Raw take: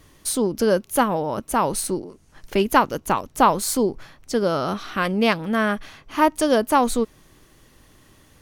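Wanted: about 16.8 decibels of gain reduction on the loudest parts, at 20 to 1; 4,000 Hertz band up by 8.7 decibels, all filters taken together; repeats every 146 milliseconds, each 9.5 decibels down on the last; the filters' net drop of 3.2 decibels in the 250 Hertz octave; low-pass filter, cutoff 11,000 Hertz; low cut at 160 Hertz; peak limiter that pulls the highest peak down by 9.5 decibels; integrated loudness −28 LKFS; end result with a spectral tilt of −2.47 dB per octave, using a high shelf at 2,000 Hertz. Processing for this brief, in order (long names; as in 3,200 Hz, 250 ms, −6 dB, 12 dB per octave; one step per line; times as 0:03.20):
high-pass filter 160 Hz
low-pass filter 11,000 Hz
parametric band 250 Hz −3 dB
high-shelf EQ 2,000 Hz +4.5 dB
parametric band 4,000 Hz +7 dB
downward compressor 20 to 1, threshold −26 dBFS
brickwall limiter −23.5 dBFS
repeating echo 146 ms, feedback 33%, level −9.5 dB
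level +5.5 dB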